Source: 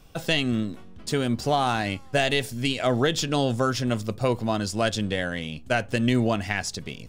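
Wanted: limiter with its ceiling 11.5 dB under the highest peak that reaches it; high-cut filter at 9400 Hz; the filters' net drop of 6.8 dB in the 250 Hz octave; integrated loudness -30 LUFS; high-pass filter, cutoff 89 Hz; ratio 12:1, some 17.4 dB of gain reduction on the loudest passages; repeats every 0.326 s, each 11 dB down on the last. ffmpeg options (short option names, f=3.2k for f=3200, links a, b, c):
-af "highpass=89,lowpass=9.4k,equalizer=f=250:t=o:g=-8,acompressor=threshold=-37dB:ratio=12,alimiter=level_in=9dB:limit=-24dB:level=0:latency=1,volume=-9dB,aecho=1:1:326|652|978:0.282|0.0789|0.0221,volume=14dB"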